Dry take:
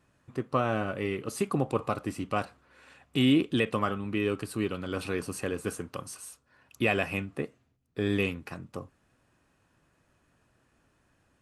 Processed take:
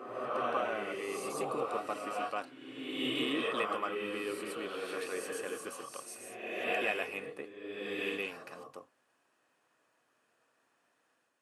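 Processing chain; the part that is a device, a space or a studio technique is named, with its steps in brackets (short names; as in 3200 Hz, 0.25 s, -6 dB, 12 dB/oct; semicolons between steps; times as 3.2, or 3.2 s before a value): ghost voice (reverse; reverb RT60 1.6 s, pre-delay 0.109 s, DRR -2.5 dB; reverse; HPF 440 Hz 12 dB/oct); gain -6.5 dB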